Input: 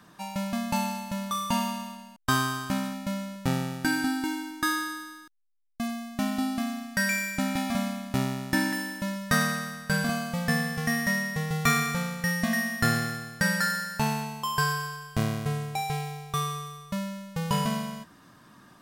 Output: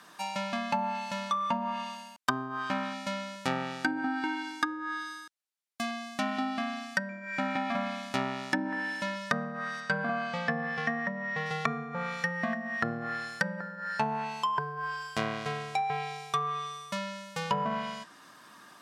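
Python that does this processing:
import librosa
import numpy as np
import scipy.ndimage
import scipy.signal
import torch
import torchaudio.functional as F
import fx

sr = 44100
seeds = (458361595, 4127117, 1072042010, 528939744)

y = fx.air_absorb(x, sr, metres=77.0, at=(9.8, 11.46))
y = fx.weighting(y, sr, curve='A')
y = fx.env_lowpass_down(y, sr, base_hz=520.0, full_db=-24.0)
y = fx.high_shelf(y, sr, hz=9300.0, db=6.5)
y = y * librosa.db_to_amplitude(3.0)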